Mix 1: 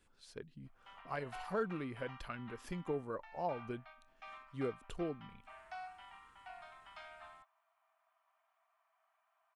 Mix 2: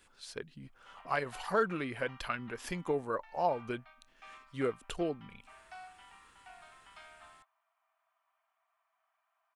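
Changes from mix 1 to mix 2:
speech +11.0 dB; master: add low shelf 470 Hz -9.5 dB

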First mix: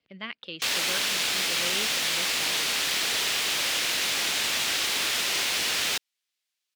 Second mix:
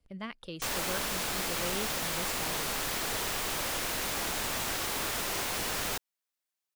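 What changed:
speech: remove BPF 110–3400 Hz; master: remove weighting filter D

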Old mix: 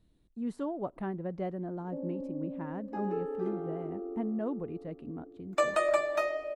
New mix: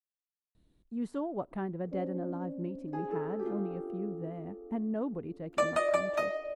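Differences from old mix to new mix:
speech: entry +0.55 s; background: send -7.5 dB

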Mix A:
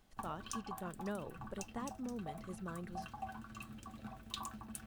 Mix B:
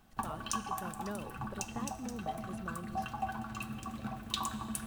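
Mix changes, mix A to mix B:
background +5.5 dB; reverb: on, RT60 2.4 s

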